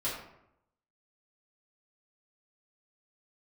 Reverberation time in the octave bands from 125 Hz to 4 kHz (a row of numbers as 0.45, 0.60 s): 0.95, 0.85, 0.80, 0.75, 0.65, 0.45 s